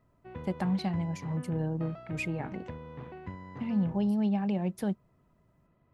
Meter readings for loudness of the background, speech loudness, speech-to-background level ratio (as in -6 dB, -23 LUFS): -44.5 LUFS, -32.0 LUFS, 12.5 dB